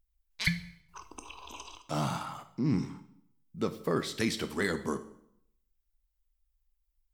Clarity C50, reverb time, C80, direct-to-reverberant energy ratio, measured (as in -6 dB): 13.5 dB, 0.70 s, 16.5 dB, 9.5 dB